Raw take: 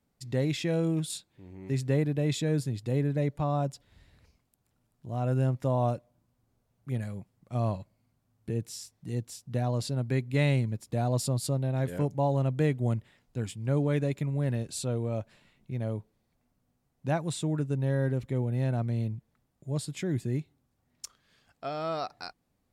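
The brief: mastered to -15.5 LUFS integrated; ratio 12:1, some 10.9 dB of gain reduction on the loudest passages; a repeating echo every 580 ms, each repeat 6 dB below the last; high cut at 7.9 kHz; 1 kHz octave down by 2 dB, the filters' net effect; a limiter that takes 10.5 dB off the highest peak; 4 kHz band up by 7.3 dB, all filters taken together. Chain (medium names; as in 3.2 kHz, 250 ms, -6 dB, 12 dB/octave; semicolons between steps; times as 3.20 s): low-pass 7.9 kHz; peaking EQ 1 kHz -3.5 dB; peaking EQ 4 kHz +9 dB; compression 12:1, threshold -33 dBFS; peak limiter -30 dBFS; feedback delay 580 ms, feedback 50%, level -6 dB; trim +24 dB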